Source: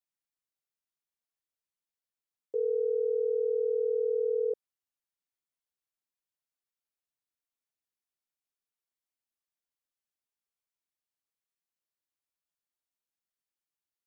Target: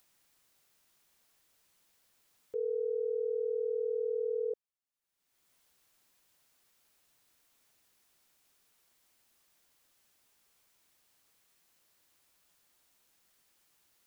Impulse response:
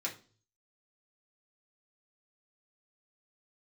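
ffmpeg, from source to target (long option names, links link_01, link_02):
-af "acompressor=mode=upward:threshold=-46dB:ratio=2.5,volume=-4.5dB"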